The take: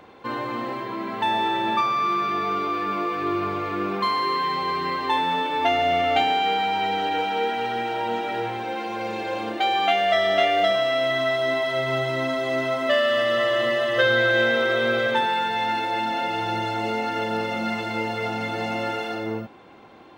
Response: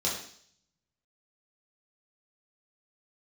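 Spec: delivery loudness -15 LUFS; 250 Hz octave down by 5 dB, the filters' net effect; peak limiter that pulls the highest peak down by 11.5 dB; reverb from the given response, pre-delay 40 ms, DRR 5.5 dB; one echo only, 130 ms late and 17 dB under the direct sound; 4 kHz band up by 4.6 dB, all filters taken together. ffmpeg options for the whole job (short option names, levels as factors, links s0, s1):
-filter_complex "[0:a]equalizer=f=250:t=o:g=-7,equalizer=f=4000:t=o:g=6,alimiter=limit=0.126:level=0:latency=1,aecho=1:1:130:0.141,asplit=2[s0][s1];[1:a]atrim=start_sample=2205,adelay=40[s2];[s1][s2]afir=irnorm=-1:irlink=0,volume=0.224[s3];[s0][s3]amix=inputs=2:normalize=0,volume=3.35"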